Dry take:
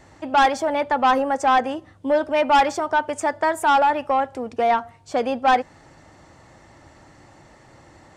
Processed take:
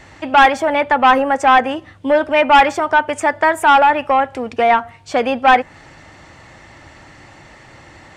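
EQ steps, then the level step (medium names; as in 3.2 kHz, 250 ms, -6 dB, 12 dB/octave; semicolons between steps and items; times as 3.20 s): dynamic bell 4.7 kHz, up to -8 dB, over -40 dBFS, Q 0.89; bass shelf 160 Hz +3.5 dB; peaking EQ 2.5 kHz +9.5 dB 1.8 oct; +4.0 dB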